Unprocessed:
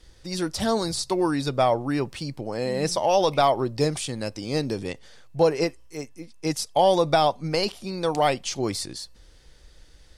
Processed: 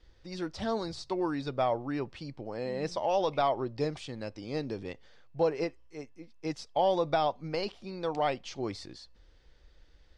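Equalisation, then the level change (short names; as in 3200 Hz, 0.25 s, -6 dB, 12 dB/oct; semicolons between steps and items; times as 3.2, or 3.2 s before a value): air absorption 150 m; bell 150 Hz -3 dB 1.2 oct; -7.0 dB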